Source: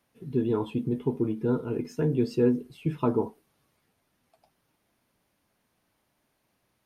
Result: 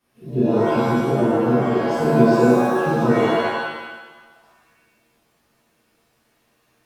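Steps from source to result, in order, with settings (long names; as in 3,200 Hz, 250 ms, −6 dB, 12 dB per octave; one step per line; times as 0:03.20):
reverb with rising layers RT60 1.1 s, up +7 semitones, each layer −2 dB, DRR −10 dB
level −3.5 dB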